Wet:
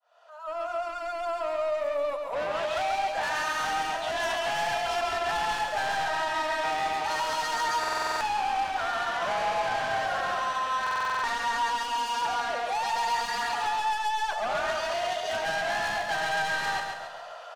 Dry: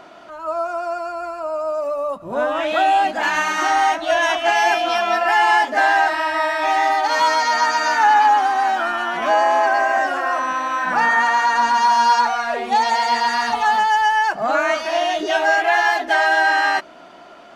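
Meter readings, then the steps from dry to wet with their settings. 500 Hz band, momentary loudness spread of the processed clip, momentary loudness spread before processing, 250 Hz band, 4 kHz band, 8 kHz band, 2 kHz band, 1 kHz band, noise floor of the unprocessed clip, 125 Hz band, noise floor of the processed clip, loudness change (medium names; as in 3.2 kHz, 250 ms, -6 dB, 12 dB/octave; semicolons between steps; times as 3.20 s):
-9.0 dB, 3 LU, 9 LU, -14.0 dB, -7.5 dB, -6.5 dB, -11.5 dB, -11.5 dB, -42 dBFS, no reading, -40 dBFS, -11.0 dB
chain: fade-in on the opening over 1.26 s; steep high-pass 470 Hz 96 dB/octave; band-stop 2.2 kHz, Q 6.3; compression 1.5:1, threshold -29 dBFS, peak gain reduction 6.5 dB; saturation -27.5 dBFS, distortion -8 dB; feedback delay 137 ms, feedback 47%, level -5 dB; buffer glitch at 7.79/10.82 s, samples 2048, times 8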